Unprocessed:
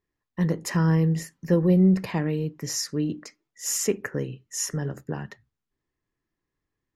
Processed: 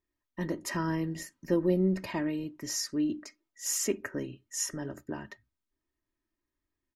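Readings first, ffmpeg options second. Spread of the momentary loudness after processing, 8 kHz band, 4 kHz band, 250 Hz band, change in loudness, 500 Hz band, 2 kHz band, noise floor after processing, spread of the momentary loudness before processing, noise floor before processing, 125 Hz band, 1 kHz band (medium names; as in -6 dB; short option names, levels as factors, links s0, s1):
14 LU, -4.0 dB, -4.0 dB, -7.0 dB, -7.0 dB, -5.0 dB, -4.0 dB, under -85 dBFS, 14 LU, -85 dBFS, -13.0 dB, -3.5 dB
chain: -af "aecho=1:1:3.2:0.68,volume=0.531"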